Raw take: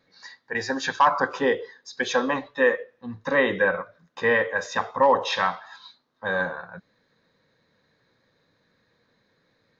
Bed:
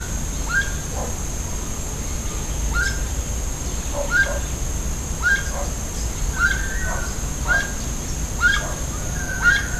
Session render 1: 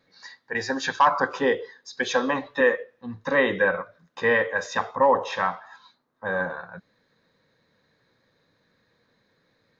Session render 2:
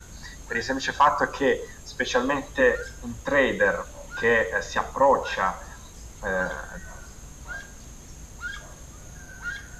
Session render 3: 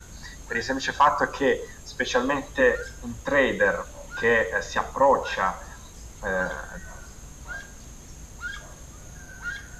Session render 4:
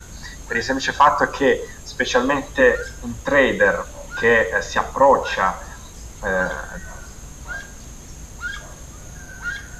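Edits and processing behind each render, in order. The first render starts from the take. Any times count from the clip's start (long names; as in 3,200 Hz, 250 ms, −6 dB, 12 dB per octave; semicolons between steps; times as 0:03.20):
0:02.16–0:02.61: multiband upward and downward compressor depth 70%; 0:04.95–0:06.50: parametric band 4,100 Hz −10 dB 1.4 octaves
mix in bed −17.5 dB
no processing that can be heard
level +5.5 dB; brickwall limiter −3 dBFS, peak gain reduction 1 dB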